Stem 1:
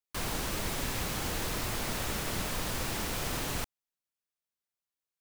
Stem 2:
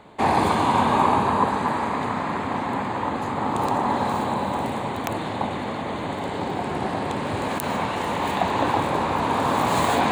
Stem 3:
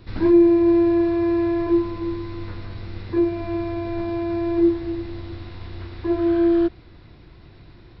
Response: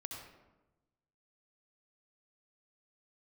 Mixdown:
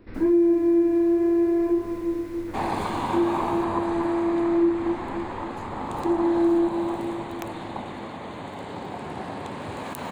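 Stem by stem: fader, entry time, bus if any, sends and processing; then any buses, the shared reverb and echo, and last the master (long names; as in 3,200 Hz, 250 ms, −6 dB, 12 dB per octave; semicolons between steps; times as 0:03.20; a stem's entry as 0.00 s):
−16.0 dB, 0.00 s, no send, no echo send, no processing
−3.0 dB, 2.35 s, no send, no echo send, no processing
−2.5 dB, 0.00 s, no send, echo send −12 dB, graphic EQ with 10 bands 125 Hz −9 dB, 250 Hz +9 dB, 500 Hz +6 dB, 2,000 Hz +5 dB, 4,000 Hz −11 dB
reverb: not used
echo: repeating echo 277 ms, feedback 55%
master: flanger 0.53 Hz, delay 9.7 ms, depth 9.8 ms, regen +88%; downward compressor 2 to 1, threshold −20 dBFS, peak gain reduction 5.5 dB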